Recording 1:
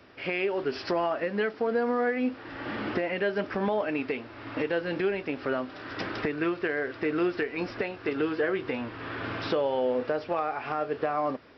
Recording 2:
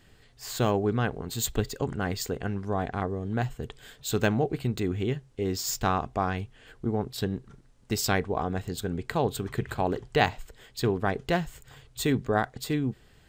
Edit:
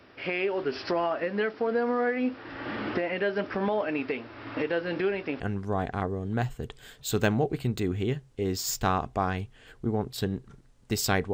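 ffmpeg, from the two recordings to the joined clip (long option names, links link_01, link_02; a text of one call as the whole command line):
ffmpeg -i cue0.wav -i cue1.wav -filter_complex "[0:a]apad=whole_dur=11.33,atrim=end=11.33,atrim=end=5.402[link_01];[1:a]atrim=start=2.398:end=8.33[link_02];[link_01][link_02]acrossfade=duration=0.004:curve1=hsin:curve2=hsin" out.wav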